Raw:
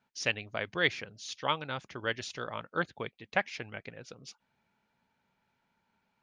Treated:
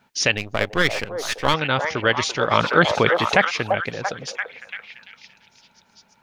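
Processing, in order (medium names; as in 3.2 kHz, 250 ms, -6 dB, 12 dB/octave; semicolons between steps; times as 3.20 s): 0.37–1.54 s: partial rectifier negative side -12 dB; repeats whose band climbs or falls 340 ms, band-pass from 630 Hz, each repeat 0.7 oct, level -5 dB; loudness maximiser +18.5 dB; 2.51–3.45 s: level flattener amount 50%; trim -3 dB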